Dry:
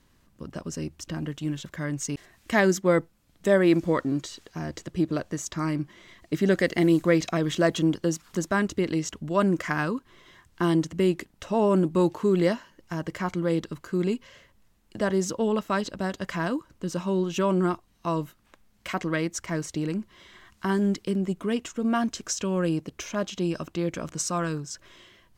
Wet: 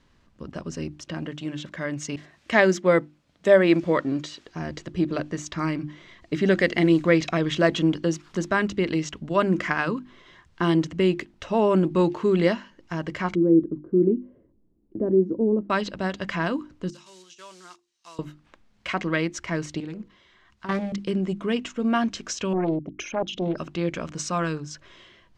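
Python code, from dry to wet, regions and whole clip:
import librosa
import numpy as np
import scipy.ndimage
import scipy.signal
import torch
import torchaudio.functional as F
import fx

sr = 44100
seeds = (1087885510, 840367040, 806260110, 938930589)

y = fx.chain(x, sr, fx.highpass(hz=130.0, slope=6),
    fx.peak_eq(hz=590.0, db=4.5, octaves=0.21), at=(0.97, 4.46))
y = fx.chain(y, sr, fx.lowpass_res(hz=330.0, q=3.5),
    fx.low_shelf(hz=190.0, db=-5.5), at=(13.35, 15.7))
y = fx.chain(y, sr, fx.block_float(bits=5),
    fx.bandpass_q(hz=7000.0, q=1.4),
    fx.over_compress(threshold_db=-45.0, ratio=-0.5), at=(16.9, 18.19))
y = fx.chain(y, sr, fx.level_steps(step_db=12),
    fx.hum_notches(base_hz=60, count=8),
    fx.doppler_dist(depth_ms=0.47), at=(19.8, 20.98))
y = fx.chain(y, sr, fx.envelope_sharpen(power=2.0),
    fx.doppler_dist(depth_ms=0.54), at=(22.53, 23.58))
y = fx.dynamic_eq(y, sr, hz=2500.0, q=1.4, threshold_db=-47.0, ratio=4.0, max_db=4)
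y = scipy.signal.sosfilt(scipy.signal.butter(2, 5200.0, 'lowpass', fs=sr, output='sos'), y)
y = fx.hum_notches(y, sr, base_hz=50, count=7)
y = F.gain(torch.from_numpy(y), 2.0).numpy()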